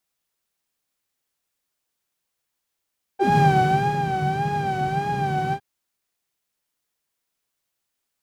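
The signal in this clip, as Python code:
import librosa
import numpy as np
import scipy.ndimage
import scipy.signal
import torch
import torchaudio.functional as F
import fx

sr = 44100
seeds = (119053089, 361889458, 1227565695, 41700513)

y = fx.sub_patch_vibrato(sr, seeds[0], note=79, wave='saw', wave2='saw', interval_st=0, detune_cents=16, level2_db=-9.0, sub_db=-21, noise_db=-7.5, kind='bandpass', cutoff_hz=120.0, q=8.5, env_oct=2.0, env_decay_s=0.12, env_sustain_pct=15, attack_ms=171.0, decay_s=0.64, sustain_db=-8.0, release_s=0.07, note_s=2.34, lfo_hz=1.7, vibrato_cents=78)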